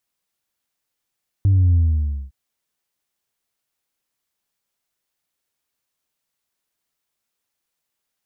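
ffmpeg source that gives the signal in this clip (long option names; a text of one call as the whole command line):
ffmpeg -f lavfi -i "aevalsrc='0.251*clip((0.86-t)/0.57,0,1)*tanh(1.12*sin(2*PI*100*0.86/log(65/100)*(exp(log(65/100)*t/0.86)-1)))/tanh(1.12)':duration=0.86:sample_rate=44100" out.wav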